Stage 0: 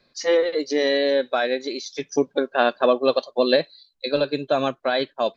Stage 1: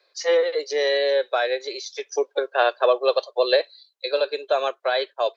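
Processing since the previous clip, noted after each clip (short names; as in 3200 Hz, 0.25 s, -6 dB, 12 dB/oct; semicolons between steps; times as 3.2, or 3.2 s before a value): steep high-pass 390 Hz 48 dB/oct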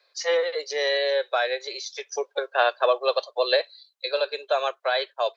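HPF 560 Hz 12 dB/oct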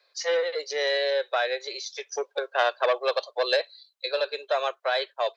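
core saturation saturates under 1300 Hz; gain -1 dB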